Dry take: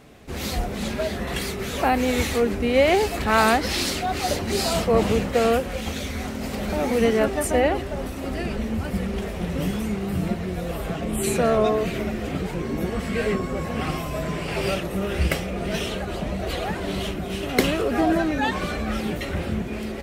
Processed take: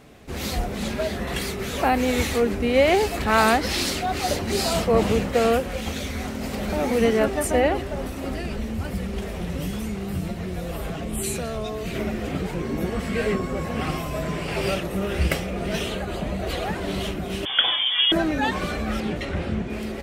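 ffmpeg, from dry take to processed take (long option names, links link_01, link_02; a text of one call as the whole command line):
ffmpeg -i in.wav -filter_complex "[0:a]asettb=1/sr,asplit=3[link_01][link_02][link_03];[link_01]atrim=end=8.344[link_04];[link_02]atrim=start=8.34:end=11.95,asetpts=PTS-STARTPTS,afade=type=in:duration=0.004:curve=qsin,afade=type=out:start_time=3.606:duration=0.004:curve=qsin,acrossover=split=130|3000[link_05][link_06][link_07];[link_06]acompressor=threshold=-28dB:ratio=6:attack=3.2:release=140:knee=2.83:detection=peak[link_08];[link_05][link_08][link_07]amix=inputs=3:normalize=0[link_09];[link_03]atrim=start=11.946[link_10];[link_04][link_09]acrossfade=duration=0.004:curve1=hsin:curve2=qsin[link_11];[link_11][link_10]acrossfade=duration=0.004:curve1=qsin:curve2=hsin,asettb=1/sr,asplit=3[link_12][link_13][link_14];[link_12]atrim=end=15.834[link_15];[link_13]atrim=start=15.83:end=16.46,asetpts=PTS-STARTPTS,afade=type=in:duration=0.004:curve=qsin,afade=type=out:start_time=0.626:duration=0.004:curve=qsin,bandreject=frequency=5500:width=8.4[link_16];[link_14]atrim=start=16.456[link_17];[link_15][link_16]acrossfade=duration=0.004:curve1=hsin:curve2=qsin[link_18];[link_18][link_17]acrossfade=duration=0.004:curve1=qsin:curve2=hsin,asettb=1/sr,asplit=3[link_19][link_20][link_21];[link_19]atrim=end=17.454[link_22];[link_20]atrim=start=17.45:end=18.12,asetpts=PTS-STARTPTS,afade=type=in:duration=0.004:curve=qsin,afade=type=out:start_time=0.666:duration=0.004:curve=qsin,lowpass=frequency=3100:width_type=q:width=0.5098,lowpass=frequency=3100:width_type=q:width=0.6013,lowpass=frequency=3100:width_type=q:width=0.9,lowpass=frequency=3100:width_type=q:width=2.563,afreqshift=-3600[link_23];[link_21]atrim=start=18.116[link_24];[link_22][link_23]acrossfade=duration=0.004:curve1=hsin:curve2=qsin[link_25];[link_25][link_24]acrossfade=duration=0.004:curve1=qsin:curve2=hsin,asettb=1/sr,asplit=3[link_26][link_27][link_28];[link_26]atrim=end=19.004[link_29];[link_27]atrim=start=19:end=19.7,asetpts=PTS-STARTPTS,afade=type=in:duration=0.004:curve=qsin,afade=type=out:start_time=0.696:duration=0.004:curve=qsin,adynamicsmooth=sensitivity=3:basefreq=7000[link_30];[link_28]atrim=start=19.696[link_31];[link_29][link_30]acrossfade=duration=0.004:curve1=hsin:curve2=qsin[link_32];[link_32][link_31]acrossfade=duration=0.004:curve1=qsin:curve2=hsin" out.wav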